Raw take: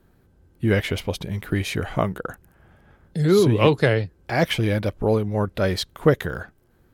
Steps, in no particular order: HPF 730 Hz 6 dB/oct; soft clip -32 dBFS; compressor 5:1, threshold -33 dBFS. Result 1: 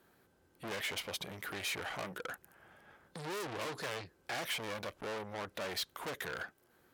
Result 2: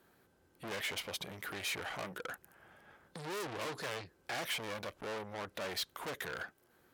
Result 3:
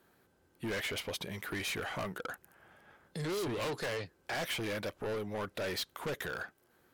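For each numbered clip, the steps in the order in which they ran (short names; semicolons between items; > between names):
soft clip > HPF > compressor; soft clip > compressor > HPF; HPF > soft clip > compressor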